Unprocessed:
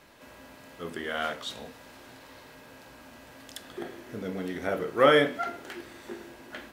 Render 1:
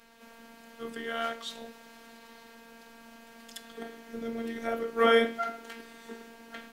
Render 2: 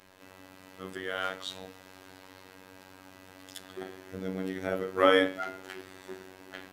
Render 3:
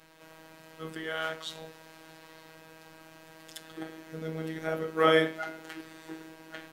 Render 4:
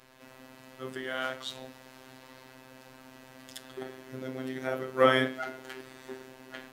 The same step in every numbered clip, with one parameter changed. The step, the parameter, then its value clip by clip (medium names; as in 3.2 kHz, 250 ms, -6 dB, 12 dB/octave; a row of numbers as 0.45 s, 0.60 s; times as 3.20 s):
robot voice, frequency: 230 Hz, 94 Hz, 160 Hz, 130 Hz